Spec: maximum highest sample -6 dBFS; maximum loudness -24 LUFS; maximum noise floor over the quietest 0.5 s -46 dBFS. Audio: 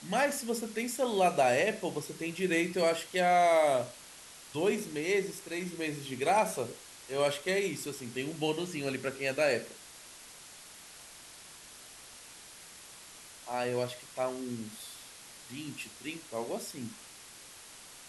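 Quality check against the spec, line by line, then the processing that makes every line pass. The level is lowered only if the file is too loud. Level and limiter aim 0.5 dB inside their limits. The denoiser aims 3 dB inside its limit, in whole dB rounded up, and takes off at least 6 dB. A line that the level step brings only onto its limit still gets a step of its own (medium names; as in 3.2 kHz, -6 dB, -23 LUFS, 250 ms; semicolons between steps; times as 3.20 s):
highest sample -15.0 dBFS: pass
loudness -32.0 LUFS: pass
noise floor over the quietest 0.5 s -51 dBFS: pass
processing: none needed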